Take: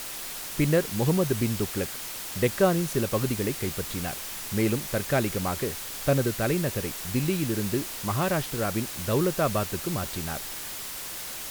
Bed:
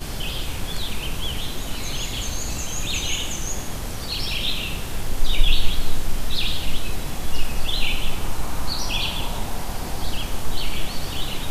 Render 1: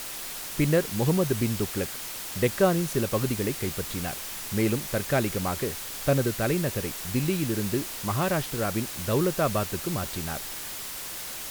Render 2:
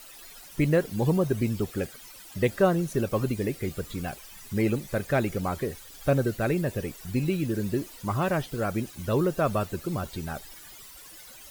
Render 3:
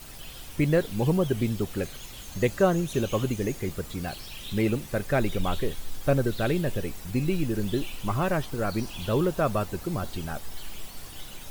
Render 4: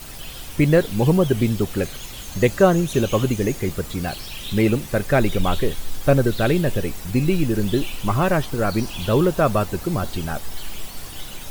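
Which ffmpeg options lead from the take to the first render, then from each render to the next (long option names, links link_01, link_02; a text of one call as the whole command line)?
ffmpeg -i in.wav -af anull out.wav
ffmpeg -i in.wav -af "afftdn=noise_reduction=15:noise_floor=-37" out.wav
ffmpeg -i in.wav -i bed.wav -filter_complex "[1:a]volume=-16.5dB[link_01];[0:a][link_01]amix=inputs=2:normalize=0" out.wav
ffmpeg -i in.wav -af "volume=7dB" out.wav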